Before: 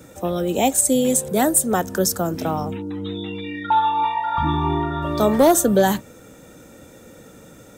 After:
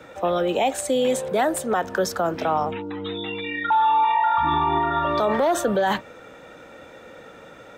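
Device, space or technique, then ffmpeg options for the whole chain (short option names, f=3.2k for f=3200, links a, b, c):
DJ mixer with the lows and highs turned down: -filter_complex "[0:a]acrossover=split=490 3800:gain=0.2 1 0.0708[a][b][c];[a][b][c]amix=inputs=3:normalize=0,alimiter=limit=-20dB:level=0:latency=1:release=36,volume=7dB"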